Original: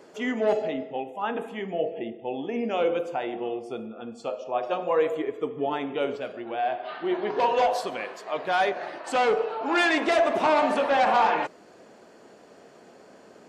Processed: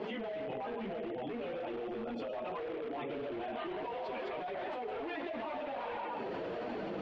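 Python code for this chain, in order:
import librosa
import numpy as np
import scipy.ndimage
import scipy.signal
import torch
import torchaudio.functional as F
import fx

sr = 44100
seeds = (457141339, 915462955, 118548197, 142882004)

p1 = fx.recorder_agc(x, sr, target_db=-19.0, rise_db_per_s=32.0, max_gain_db=30)
p2 = scipy.signal.sosfilt(scipy.signal.butter(2, 42.0, 'highpass', fs=sr, output='sos'), p1)
p3 = fx.peak_eq(p2, sr, hz=1500.0, db=-6.5, octaves=1.2)
p4 = fx.comb_fb(p3, sr, f0_hz=320.0, decay_s=1.0, harmonics='all', damping=0.0, mix_pct=60)
p5 = fx.echo_feedback(p4, sr, ms=285, feedback_pct=44, wet_db=-9.0)
p6 = fx.stretch_vocoder_free(p5, sr, factor=0.52)
p7 = fx.low_shelf(p6, sr, hz=76.0, db=-8.0)
p8 = fx.chorus_voices(p7, sr, voices=4, hz=0.27, base_ms=13, depth_ms=4.6, mix_pct=70)
p9 = (np.mod(10.0 ** (38.5 / 20.0) * p8 + 1.0, 2.0) - 1.0) / 10.0 ** (38.5 / 20.0)
p10 = p8 + F.gain(torch.from_numpy(p9), -8.5).numpy()
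p11 = scipy.signal.sosfilt(scipy.signal.butter(4, 3200.0, 'lowpass', fs=sr, output='sos'), p10)
p12 = fx.env_flatten(p11, sr, amount_pct=100)
y = F.gain(torch.from_numpy(p12), -8.0).numpy()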